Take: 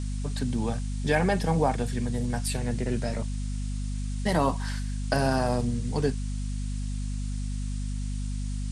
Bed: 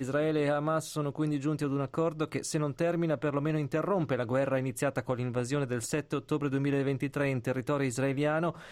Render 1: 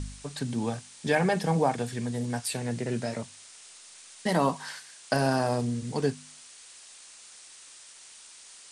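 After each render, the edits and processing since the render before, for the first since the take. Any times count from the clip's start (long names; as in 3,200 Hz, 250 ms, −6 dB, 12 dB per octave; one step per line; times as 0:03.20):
hum removal 50 Hz, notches 5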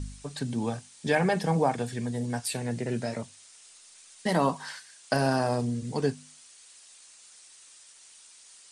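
broadband denoise 6 dB, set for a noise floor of −51 dBFS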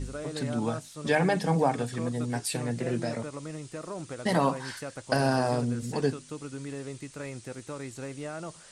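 mix in bed −9 dB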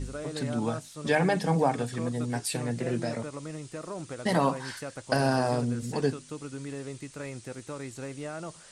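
no processing that can be heard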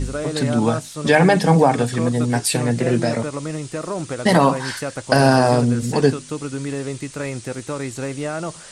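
level +11.5 dB
brickwall limiter −3 dBFS, peak gain reduction 2.5 dB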